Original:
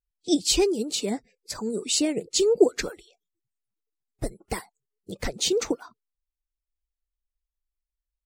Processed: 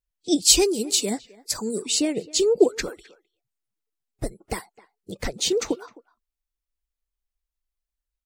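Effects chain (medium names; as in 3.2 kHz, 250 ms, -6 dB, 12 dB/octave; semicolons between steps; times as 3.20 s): 0.42–1.82 s: treble shelf 4.8 kHz +11.5 dB; speakerphone echo 260 ms, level -21 dB; trim +1 dB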